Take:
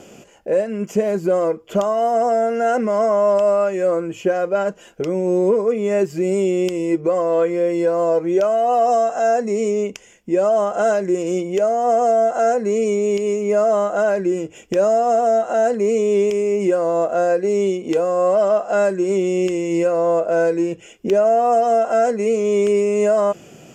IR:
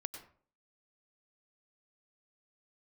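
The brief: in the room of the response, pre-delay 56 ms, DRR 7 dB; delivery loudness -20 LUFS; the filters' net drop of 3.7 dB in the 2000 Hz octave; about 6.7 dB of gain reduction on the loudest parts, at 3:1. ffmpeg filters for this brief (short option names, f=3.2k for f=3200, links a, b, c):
-filter_complex "[0:a]equalizer=f=2k:t=o:g=-5.5,acompressor=threshold=-22dB:ratio=3,asplit=2[a][b];[1:a]atrim=start_sample=2205,adelay=56[c];[b][c]afir=irnorm=-1:irlink=0,volume=-5dB[d];[a][d]amix=inputs=2:normalize=0,volume=3dB"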